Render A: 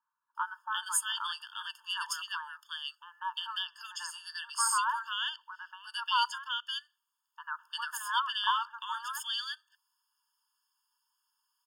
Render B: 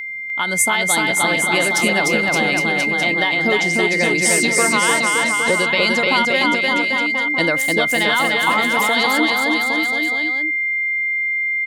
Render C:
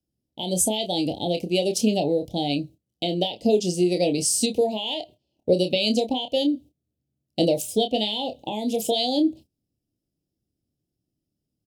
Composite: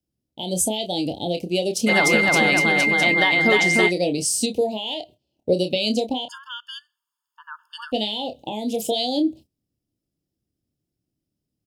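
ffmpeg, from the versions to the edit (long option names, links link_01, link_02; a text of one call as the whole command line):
ffmpeg -i take0.wav -i take1.wav -i take2.wav -filter_complex "[2:a]asplit=3[link_01][link_02][link_03];[link_01]atrim=end=1.9[link_04];[1:a]atrim=start=1.86:end=3.92[link_05];[link_02]atrim=start=3.88:end=6.292[link_06];[0:a]atrim=start=6.288:end=7.922[link_07];[link_03]atrim=start=7.918[link_08];[link_04][link_05]acrossfade=duration=0.04:curve1=tri:curve2=tri[link_09];[link_09][link_06]acrossfade=duration=0.04:curve1=tri:curve2=tri[link_10];[link_10][link_07]acrossfade=duration=0.004:curve1=hsin:curve2=hsin[link_11];[link_11][link_08]acrossfade=duration=0.004:curve1=hsin:curve2=hsin" out.wav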